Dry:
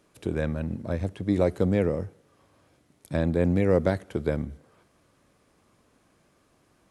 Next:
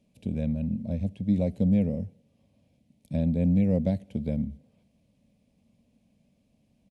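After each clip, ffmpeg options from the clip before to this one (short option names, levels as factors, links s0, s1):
-af "firequalizer=gain_entry='entry(140,0);entry(220,8);entry(340,-15);entry(570,-4);entry(1300,-28);entry(2400,-6);entry(6600,-11)':delay=0.05:min_phase=1,volume=0.891"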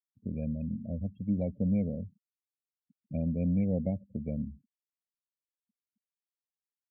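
-af "afftfilt=real='re*gte(hypot(re,im),0.01)':imag='im*gte(hypot(re,im),0.01)':win_size=1024:overlap=0.75,volume=0.531"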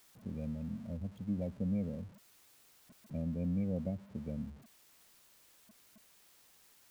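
-af "aeval=exprs='val(0)+0.5*0.00501*sgn(val(0))':c=same,volume=0.473"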